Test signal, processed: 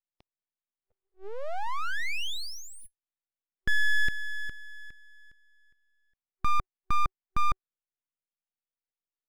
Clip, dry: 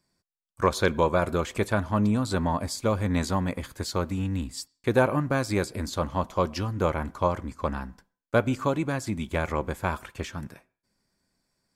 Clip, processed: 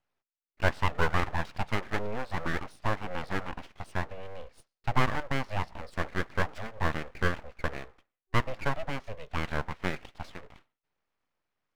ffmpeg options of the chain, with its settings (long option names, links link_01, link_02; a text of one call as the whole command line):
ffmpeg -i in.wav -filter_complex "[0:a]afftfilt=real='re*between(b*sr/4096,190,5300)':imag='im*between(b*sr/4096,190,5300)':win_size=4096:overlap=0.75,acrossover=split=270 2100:gain=0.224 1 0.112[link_01][link_02][link_03];[link_01][link_02][link_03]amix=inputs=3:normalize=0,aeval=exprs='abs(val(0))':channel_layout=same" out.wav